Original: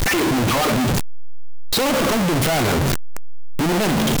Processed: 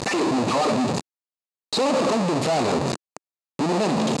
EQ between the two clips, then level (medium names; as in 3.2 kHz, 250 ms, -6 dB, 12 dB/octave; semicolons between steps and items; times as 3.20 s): cabinet simulation 210–7100 Hz, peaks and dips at 330 Hz -3 dB, 1.5 kHz -10 dB, 2.1 kHz -8 dB, 3.2 kHz -10 dB, 5.7 kHz -8 dB; 0.0 dB